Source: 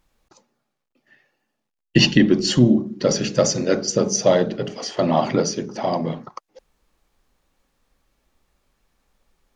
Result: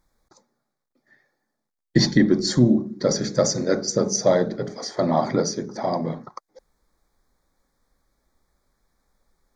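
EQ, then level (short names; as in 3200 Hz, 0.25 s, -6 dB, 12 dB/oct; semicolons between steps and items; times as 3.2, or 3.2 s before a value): Butterworth band-stop 2800 Hz, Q 2; -2.0 dB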